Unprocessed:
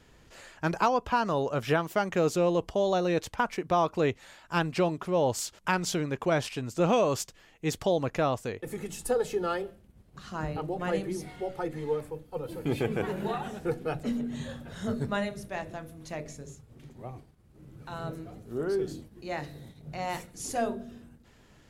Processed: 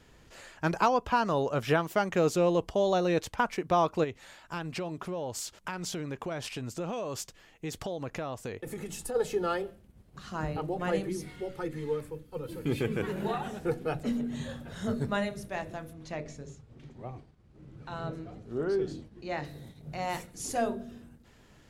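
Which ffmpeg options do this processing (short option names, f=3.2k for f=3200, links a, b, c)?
-filter_complex "[0:a]asplit=3[a][b][c];[a]afade=t=out:st=4.03:d=0.02[d];[b]acompressor=threshold=-33dB:ratio=4:attack=3.2:release=140:knee=1:detection=peak,afade=t=in:st=4.03:d=0.02,afade=t=out:st=9.14:d=0.02[e];[c]afade=t=in:st=9.14:d=0.02[f];[d][e][f]amix=inputs=3:normalize=0,asettb=1/sr,asplit=3[g][h][i];[g]atrim=end=11.094[j];[h]atrim=start=11.09:end=13.16,asetpts=PTS-STARTPTS,afade=t=in:d=0.004:c=qsin,afade=t=out:st=2.066:d=0.004:c=qsin,equalizer=f=730:t=o:w=0.66:g=-10[k];[i]atrim=start=13.156[l];[j][k]acrossfade=d=0.004:c1=hsin:c2=qsin[m];[m][l]acrossfade=d=0.004:c1=qsin:c2=hsin,asettb=1/sr,asplit=3[n][o][p];[n]atrim=end=15.934[q];[o]atrim=start=15.93:end=19.45,asetpts=PTS-STARTPTS,afade=t=in:d=0.004:c=qsin,afade=t=out:st=3.516:d=0.004:c=qsin,lowpass=5.8k[r];[p]atrim=start=19.446[s];[q][r]acrossfade=d=0.004:c1=hsin:c2=qsin[t];[t][s]acrossfade=d=0.004:c1=qsin:c2=hsin"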